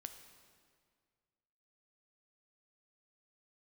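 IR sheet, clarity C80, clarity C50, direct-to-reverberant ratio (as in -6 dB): 10.0 dB, 8.5 dB, 7.0 dB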